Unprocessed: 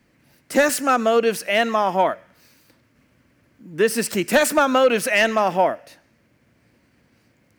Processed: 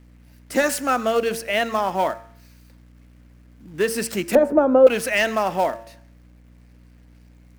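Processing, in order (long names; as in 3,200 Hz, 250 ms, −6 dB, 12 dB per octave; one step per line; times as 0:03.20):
mains hum 60 Hz, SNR 25 dB
hum removal 113.9 Hz, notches 15
in parallel at −8 dB: log-companded quantiser 4 bits
0:04.35–0:04.87: on the sum: drawn EQ curve 170 Hz 0 dB, 430 Hz +11 dB, 3,900 Hz −27 dB
level −5.5 dB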